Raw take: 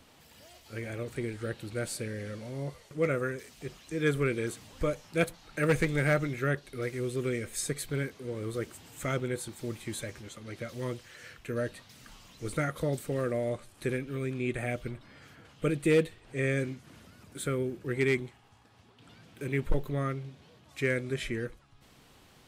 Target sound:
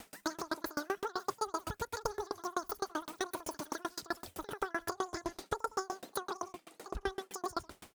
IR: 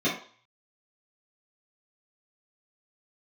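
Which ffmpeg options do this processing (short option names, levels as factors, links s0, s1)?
-filter_complex "[0:a]acrossover=split=480|3000[s0][s1][s2];[s1]acompressor=threshold=0.0112:ratio=6[s3];[s0][s3][s2]amix=inputs=3:normalize=0,aecho=1:1:311:0.178,acompressor=threshold=0.0141:ratio=10,asetrate=124803,aresample=44100,aeval=exprs='val(0)*pow(10,-34*if(lt(mod(7.8*n/s,1),2*abs(7.8)/1000),1-mod(7.8*n/s,1)/(2*abs(7.8)/1000),(mod(7.8*n/s,1)-2*abs(7.8)/1000)/(1-2*abs(7.8)/1000))/20)':c=same,volume=3.76"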